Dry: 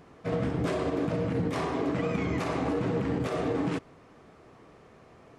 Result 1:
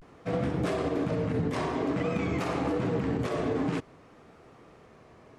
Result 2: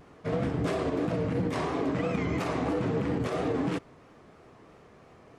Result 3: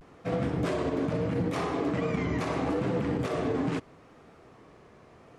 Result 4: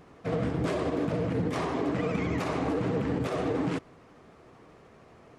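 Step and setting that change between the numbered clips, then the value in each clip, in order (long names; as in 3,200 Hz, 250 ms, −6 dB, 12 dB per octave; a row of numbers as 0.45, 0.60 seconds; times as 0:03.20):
pitch vibrato, speed: 0.51, 3, 0.77, 13 Hertz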